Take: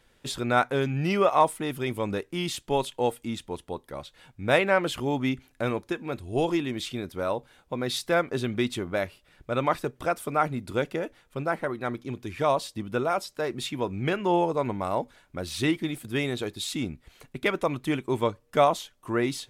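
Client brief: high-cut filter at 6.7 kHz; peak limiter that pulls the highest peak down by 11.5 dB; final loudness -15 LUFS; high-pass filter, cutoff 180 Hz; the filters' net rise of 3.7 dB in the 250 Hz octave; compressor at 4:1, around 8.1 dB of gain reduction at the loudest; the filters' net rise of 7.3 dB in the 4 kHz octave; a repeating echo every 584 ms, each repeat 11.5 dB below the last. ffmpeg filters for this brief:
-af "highpass=180,lowpass=6700,equalizer=f=250:t=o:g=6,equalizer=f=4000:t=o:g=9,acompressor=threshold=0.0631:ratio=4,alimiter=limit=0.0668:level=0:latency=1,aecho=1:1:584|1168|1752:0.266|0.0718|0.0194,volume=8.91"

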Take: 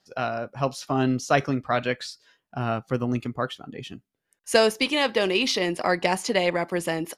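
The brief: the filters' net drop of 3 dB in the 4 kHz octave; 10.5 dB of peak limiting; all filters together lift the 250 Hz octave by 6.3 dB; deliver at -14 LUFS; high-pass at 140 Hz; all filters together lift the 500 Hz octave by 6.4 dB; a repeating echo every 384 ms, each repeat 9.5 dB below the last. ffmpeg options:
-af "highpass=140,equalizer=f=250:t=o:g=6,equalizer=f=500:t=o:g=6.5,equalizer=f=4000:t=o:g=-4.5,alimiter=limit=0.282:level=0:latency=1,aecho=1:1:384|768|1152|1536:0.335|0.111|0.0365|0.012,volume=2.66"

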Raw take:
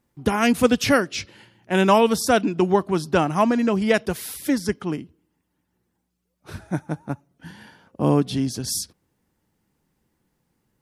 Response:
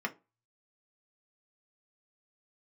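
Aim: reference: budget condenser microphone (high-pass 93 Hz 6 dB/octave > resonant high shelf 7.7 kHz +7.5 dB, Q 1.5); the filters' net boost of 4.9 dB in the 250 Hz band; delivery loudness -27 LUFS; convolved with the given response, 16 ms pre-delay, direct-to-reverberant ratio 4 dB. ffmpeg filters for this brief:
-filter_complex "[0:a]equalizer=f=250:t=o:g=6.5,asplit=2[s0][s1];[1:a]atrim=start_sample=2205,adelay=16[s2];[s1][s2]afir=irnorm=-1:irlink=0,volume=0.335[s3];[s0][s3]amix=inputs=2:normalize=0,highpass=f=93:p=1,highshelf=f=7700:t=q:w=1.5:g=7.5,volume=0.316"

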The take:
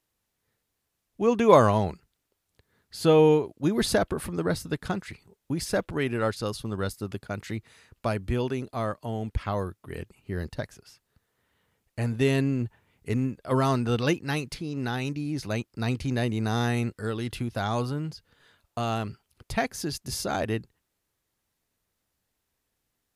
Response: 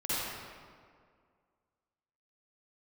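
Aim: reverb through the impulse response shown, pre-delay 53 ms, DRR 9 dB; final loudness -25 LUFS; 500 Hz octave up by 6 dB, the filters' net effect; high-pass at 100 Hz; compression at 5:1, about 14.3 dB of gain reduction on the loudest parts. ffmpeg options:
-filter_complex "[0:a]highpass=100,equalizer=f=500:t=o:g=7,acompressor=threshold=0.0631:ratio=5,asplit=2[s0][s1];[1:a]atrim=start_sample=2205,adelay=53[s2];[s1][s2]afir=irnorm=-1:irlink=0,volume=0.141[s3];[s0][s3]amix=inputs=2:normalize=0,volume=1.78"

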